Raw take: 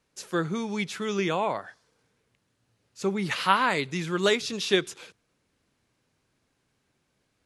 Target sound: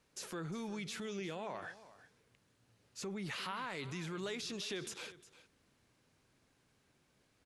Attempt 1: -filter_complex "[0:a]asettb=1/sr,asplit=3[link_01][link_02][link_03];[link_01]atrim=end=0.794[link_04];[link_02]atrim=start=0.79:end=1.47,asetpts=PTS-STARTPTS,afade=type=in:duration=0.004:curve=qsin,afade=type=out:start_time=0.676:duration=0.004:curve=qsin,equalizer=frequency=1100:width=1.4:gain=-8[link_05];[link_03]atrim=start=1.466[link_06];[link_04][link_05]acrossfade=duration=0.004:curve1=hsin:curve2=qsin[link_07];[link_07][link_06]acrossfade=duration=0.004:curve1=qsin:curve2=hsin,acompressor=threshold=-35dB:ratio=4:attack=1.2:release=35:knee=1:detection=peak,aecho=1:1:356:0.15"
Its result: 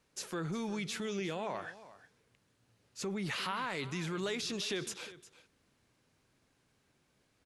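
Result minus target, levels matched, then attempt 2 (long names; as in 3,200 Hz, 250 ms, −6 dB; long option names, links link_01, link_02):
downward compressor: peak gain reduction −5 dB
-filter_complex "[0:a]asettb=1/sr,asplit=3[link_01][link_02][link_03];[link_01]atrim=end=0.794[link_04];[link_02]atrim=start=0.79:end=1.47,asetpts=PTS-STARTPTS,afade=type=in:duration=0.004:curve=qsin,afade=type=out:start_time=0.676:duration=0.004:curve=qsin,equalizer=frequency=1100:width=1.4:gain=-8[link_05];[link_03]atrim=start=1.466[link_06];[link_04][link_05]acrossfade=duration=0.004:curve1=hsin:curve2=qsin[link_07];[link_07][link_06]acrossfade=duration=0.004:curve1=qsin:curve2=hsin,acompressor=threshold=-41.5dB:ratio=4:attack=1.2:release=35:knee=1:detection=peak,aecho=1:1:356:0.15"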